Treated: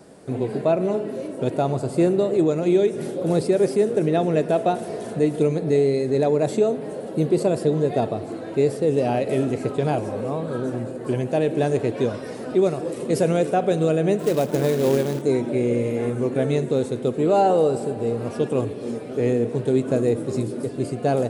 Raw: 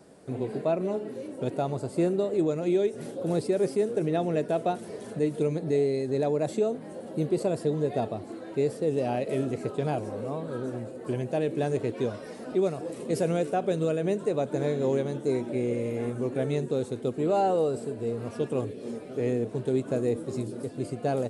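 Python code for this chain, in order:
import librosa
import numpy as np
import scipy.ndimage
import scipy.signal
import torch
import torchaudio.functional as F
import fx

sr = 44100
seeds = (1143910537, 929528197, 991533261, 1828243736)

y = fx.rev_spring(x, sr, rt60_s=3.4, pass_ms=(50,), chirp_ms=55, drr_db=13.0)
y = fx.quant_float(y, sr, bits=2, at=(14.19, 15.22))
y = F.gain(torch.from_numpy(y), 6.5).numpy()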